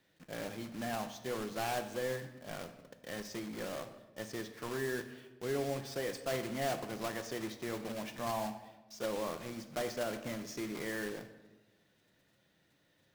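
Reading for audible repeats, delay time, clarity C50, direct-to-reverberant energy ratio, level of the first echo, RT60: no echo, no echo, 11.0 dB, 7.0 dB, no echo, 1.1 s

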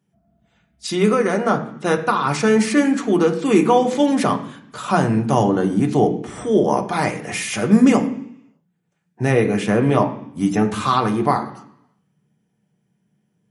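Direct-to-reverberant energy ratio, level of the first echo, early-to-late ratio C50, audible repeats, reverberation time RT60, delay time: 2.0 dB, no echo, 11.5 dB, no echo, 0.70 s, no echo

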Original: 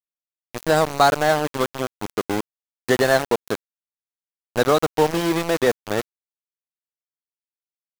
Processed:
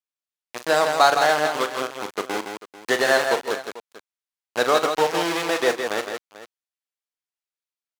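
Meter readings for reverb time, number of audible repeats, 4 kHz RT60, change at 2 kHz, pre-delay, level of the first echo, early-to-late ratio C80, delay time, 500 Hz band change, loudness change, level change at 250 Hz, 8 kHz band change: no reverb, 3, no reverb, +2.5 dB, no reverb, -10.5 dB, no reverb, 41 ms, -1.5 dB, -0.5 dB, -6.0 dB, +0.5 dB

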